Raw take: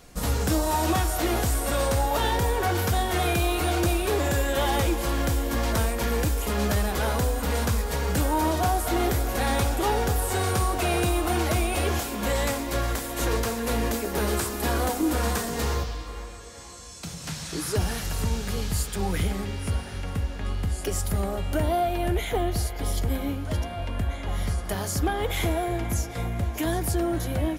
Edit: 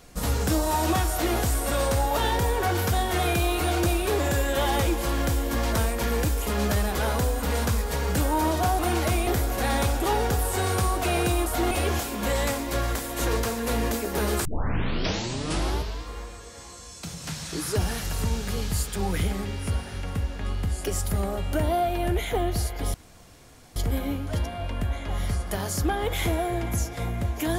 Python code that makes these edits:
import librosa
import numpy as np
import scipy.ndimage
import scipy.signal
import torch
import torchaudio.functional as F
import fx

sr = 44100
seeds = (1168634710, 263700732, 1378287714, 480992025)

y = fx.edit(x, sr, fx.swap(start_s=8.79, length_s=0.25, other_s=11.23, other_length_s=0.48),
    fx.tape_start(start_s=14.45, length_s=1.58),
    fx.insert_room_tone(at_s=22.94, length_s=0.82), tone=tone)